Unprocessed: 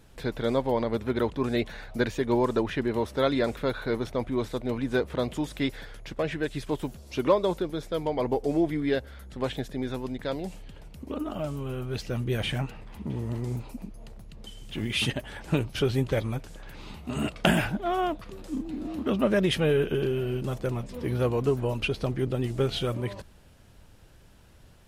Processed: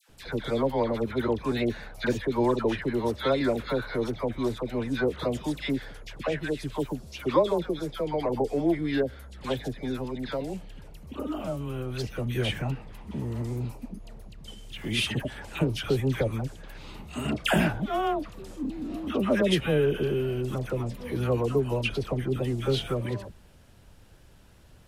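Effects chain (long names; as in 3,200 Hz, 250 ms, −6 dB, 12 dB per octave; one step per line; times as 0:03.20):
all-pass dispersion lows, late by 93 ms, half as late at 1,100 Hz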